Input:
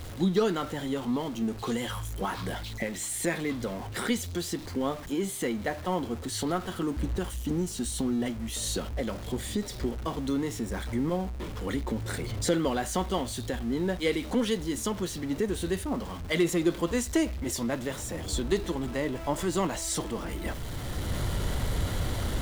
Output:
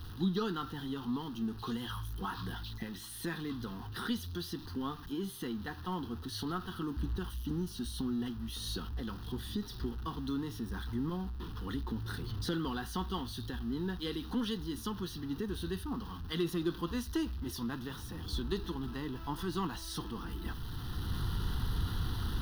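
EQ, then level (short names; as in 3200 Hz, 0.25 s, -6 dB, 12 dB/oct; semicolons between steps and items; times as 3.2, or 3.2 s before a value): fixed phaser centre 2200 Hz, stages 6; -4.0 dB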